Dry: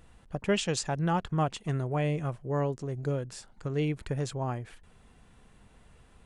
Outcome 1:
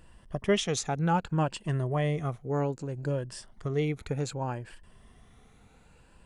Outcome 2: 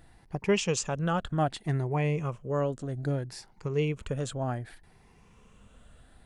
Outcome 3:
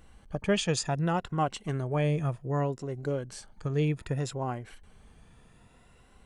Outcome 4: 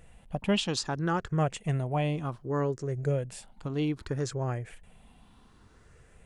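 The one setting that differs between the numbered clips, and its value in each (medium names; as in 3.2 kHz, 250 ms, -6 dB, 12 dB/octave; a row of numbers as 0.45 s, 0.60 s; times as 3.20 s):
drifting ripple filter, ripples per octave: 1.3, 0.79, 2.1, 0.51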